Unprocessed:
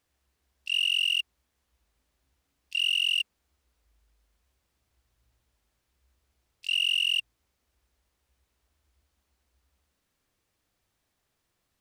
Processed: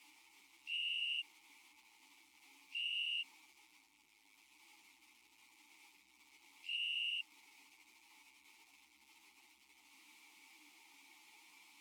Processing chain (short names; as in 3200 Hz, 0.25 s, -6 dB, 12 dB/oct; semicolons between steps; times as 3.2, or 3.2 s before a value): switching spikes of -30.5 dBFS; vowel filter u; ensemble effect; gain +7 dB